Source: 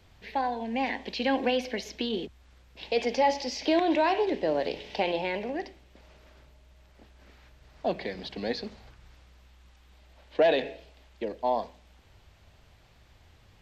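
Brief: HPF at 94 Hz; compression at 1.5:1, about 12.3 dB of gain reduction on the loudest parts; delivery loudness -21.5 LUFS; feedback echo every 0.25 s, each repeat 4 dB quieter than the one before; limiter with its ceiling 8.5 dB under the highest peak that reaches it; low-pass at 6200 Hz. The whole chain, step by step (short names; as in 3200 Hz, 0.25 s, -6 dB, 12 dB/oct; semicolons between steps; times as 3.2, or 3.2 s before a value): HPF 94 Hz; LPF 6200 Hz; compressor 1.5:1, threshold -54 dBFS; limiter -33 dBFS; feedback echo 0.25 s, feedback 63%, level -4 dB; gain +21 dB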